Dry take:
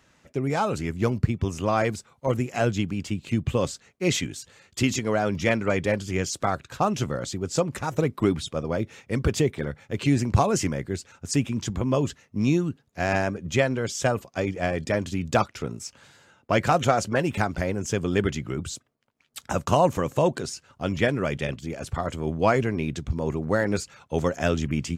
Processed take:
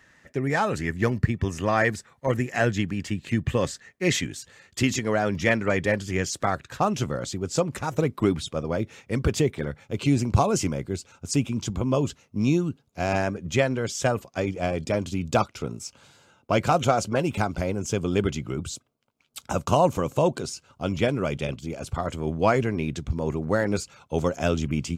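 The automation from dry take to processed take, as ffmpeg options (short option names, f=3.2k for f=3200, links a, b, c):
-af "asetnsamples=n=441:p=0,asendcmd='4.16 equalizer g 6;6.84 equalizer g -1.5;9.84 equalizer g -12;13.18 equalizer g -2;14.46 equalizer g -11.5;21.98 equalizer g -2.5;23.68 equalizer g -10',equalizer=f=1.8k:t=o:w=0.24:g=15"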